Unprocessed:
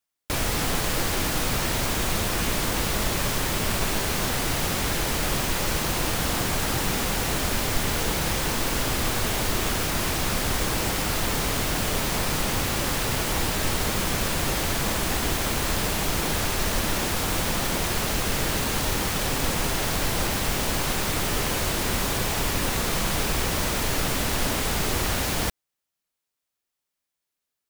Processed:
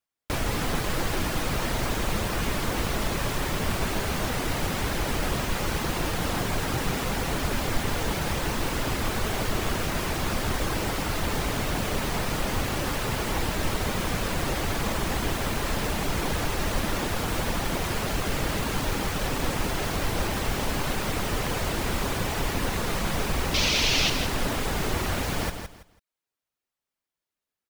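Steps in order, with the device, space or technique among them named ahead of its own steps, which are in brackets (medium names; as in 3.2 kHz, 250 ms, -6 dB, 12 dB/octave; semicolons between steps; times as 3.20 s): reverb removal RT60 0.51 s; 23.54–24.10 s: high-order bell 3.8 kHz +14 dB; behind a face mask (treble shelf 3.4 kHz -7.5 dB); feedback delay 165 ms, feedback 24%, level -8 dB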